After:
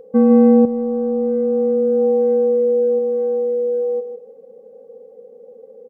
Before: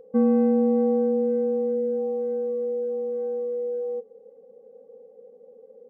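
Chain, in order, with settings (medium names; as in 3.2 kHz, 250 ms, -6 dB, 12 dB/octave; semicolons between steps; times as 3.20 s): feedback delay 154 ms, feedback 26%, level -9.5 dB; 0.65–2.99 s: compressor with a negative ratio -24 dBFS, ratio -1; trim +7 dB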